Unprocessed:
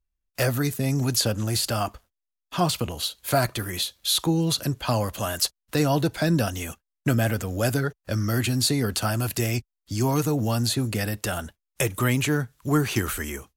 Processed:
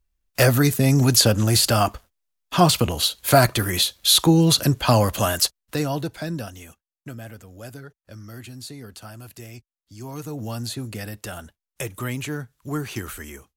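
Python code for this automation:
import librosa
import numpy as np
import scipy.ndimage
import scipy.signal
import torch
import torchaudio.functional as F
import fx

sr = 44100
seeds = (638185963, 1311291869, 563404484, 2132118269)

y = fx.gain(x, sr, db=fx.line((5.23, 7.0), (5.86, -3.0), (7.15, -15.0), (9.94, -15.0), (10.45, -6.0)))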